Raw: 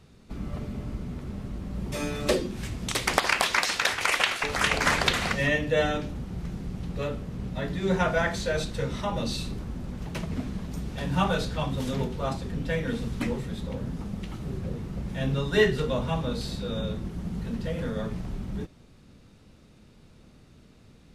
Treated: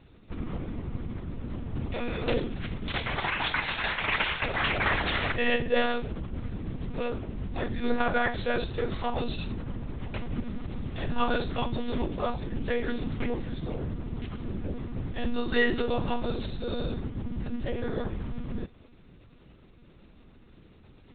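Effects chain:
brickwall limiter −14 dBFS, peak gain reduction 10 dB
one-pitch LPC vocoder at 8 kHz 240 Hz

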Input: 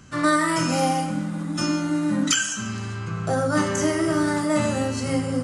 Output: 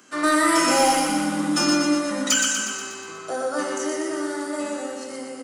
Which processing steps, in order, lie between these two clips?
source passing by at 0:01.27, 6 m/s, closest 3.7 metres
high-pass filter 280 Hz 24 dB per octave
high-shelf EQ 11,000 Hz +8.5 dB
soft clipping −17.5 dBFS, distortion −20 dB
on a send: repeating echo 121 ms, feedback 58%, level −4.5 dB
on the sum: level +7 dB

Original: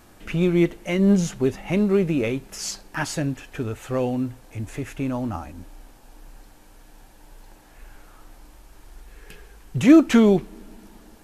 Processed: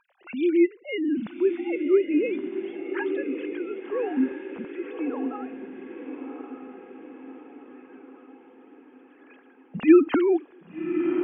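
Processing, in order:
three sine waves on the formant tracks
dynamic equaliser 610 Hz, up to −3 dB, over −43 dBFS, Q 4.4
on a send: feedback delay with all-pass diffusion 1,172 ms, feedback 50%, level −7 dB
on the sum: level −3.5 dB

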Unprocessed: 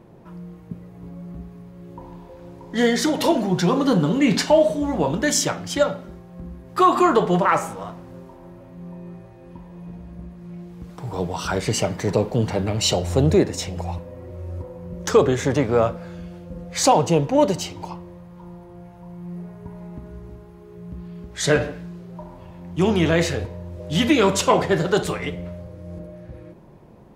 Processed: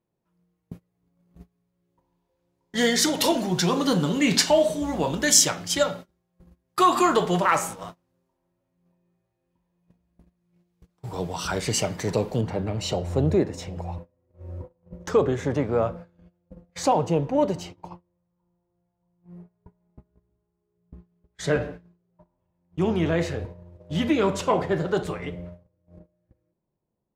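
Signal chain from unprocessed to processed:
noise gate −32 dBFS, range −29 dB
high-shelf EQ 2,500 Hz +11 dB, from 0:10.83 +5.5 dB, from 0:12.41 −8.5 dB
level −4.5 dB

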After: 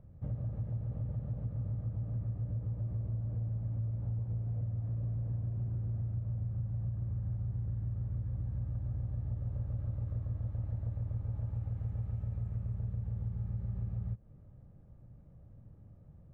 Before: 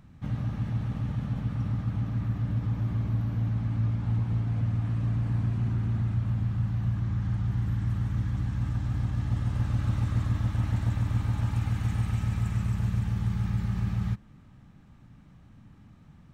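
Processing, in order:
drawn EQ curve 110 Hz 0 dB, 250 Hz −11 dB, 550 Hz +4 dB, 870 Hz −12 dB, 4,500 Hz −28 dB
downward compressor, threshold −33 dBFS, peak gain reduction 10.5 dB

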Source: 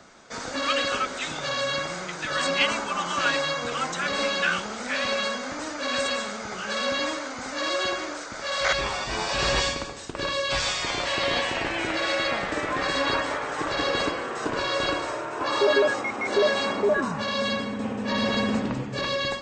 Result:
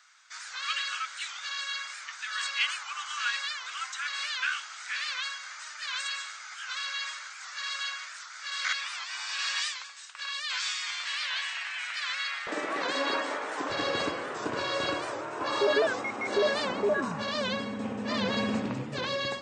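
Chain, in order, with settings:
loose part that buzzes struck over −28 dBFS, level −32 dBFS
high-pass filter 1,300 Hz 24 dB per octave, from 0:12.47 220 Hz, from 0:13.70 78 Hz
wow of a warped record 78 rpm, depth 160 cents
level −4.5 dB

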